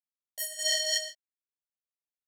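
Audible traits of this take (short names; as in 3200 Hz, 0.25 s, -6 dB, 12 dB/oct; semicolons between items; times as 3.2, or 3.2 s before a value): a quantiser's noise floor 10-bit, dither none; chopped level 1.7 Hz, depth 65%, duty 65%; a shimmering, thickened sound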